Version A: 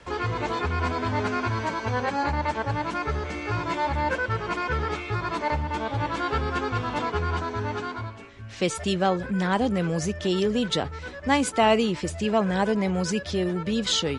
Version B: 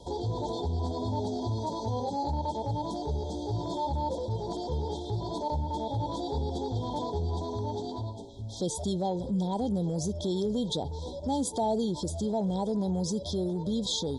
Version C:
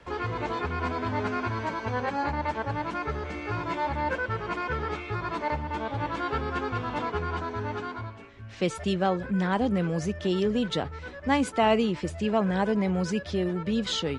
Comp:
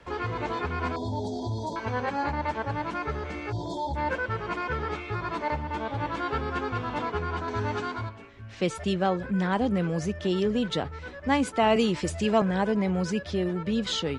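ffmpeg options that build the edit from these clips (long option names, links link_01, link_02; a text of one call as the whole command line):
ffmpeg -i take0.wav -i take1.wav -i take2.wav -filter_complex "[1:a]asplit=2[link_01][link_02];[0:a]asplit=2[link_03][link_04];[2:a]asplit=5[link_05][link_06][link_07][link_08][link_09];[link_05]atrim=end=0.962[link_10];[link_01]atrim=start=0.958:end=1.762[link_11];[link_06]atrim=start=1.758:end=3.53[link_12];[link_02]atrim=start=3.49:end=3.98[link_13];[link_07]atrim=start=3.94:end=7.482[link_14];[link_03]atrim=start=7.478:end=8.092[link_15];[link_08]atrim=start=8.088:end=11.762[link_16];[link_04]atrim=start=11.758:end=12.422[link_17];[link_09]atrim=start=12.418[link_18];[link_10][link_11]acrossfade=duration=0.004:curve1=hsin:curve2=hsin[link_19];[link_19][link_12]acrossfade=duration=0.004:curve1=hsin:curve2=hsin[link_20];[link_20][link_13]acrossfade=duration=0.04:curve1=tri:curve2=tri[link_21];[link_21][link_14]acrossfade=duration=0.04:curve1=tri:curve2=tri[link_22];[link_22][link_15]acrossfade=duration=0.004:curve1=hsin:curve2=hsin[link_23];[link_23][link_16]acrossfade=duration=0.004:curve1=hsin:curve2=hsin[link_24];[link_24][link_17]acrossfade=duration=0.004:curve1=hsin:curve2=hsin[link_25];[link_25][link_18]acrossfade=duration=0.004:curve1=hsin:curve2=hsin" out.wav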